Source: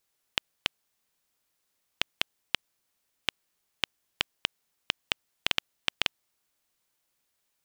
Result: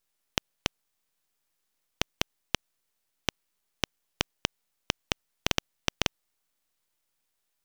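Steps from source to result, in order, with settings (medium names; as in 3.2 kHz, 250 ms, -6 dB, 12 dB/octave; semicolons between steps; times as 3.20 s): half-wave rectifier; trim +2 dB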